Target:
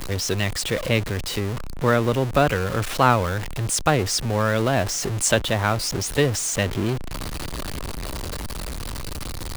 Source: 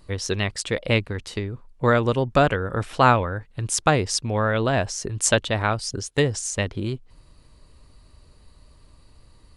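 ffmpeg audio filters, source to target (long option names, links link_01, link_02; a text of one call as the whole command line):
ffmpeg -i in.wav -filter_complex "[0:a]aeval=exprs='val(0)+0.5*0.0794*sgn(val(0))':channel_layout=same,acrossover=split=160|3200[link_01][link_02][link_03];[link_02]dynaudnorm=framelen=200:gausssize=17:maxgain=11.5dB[link_04];[link_01][link_04][link_03]amix=inputs=3:normalize=0,volume=-2.5dB" out.wav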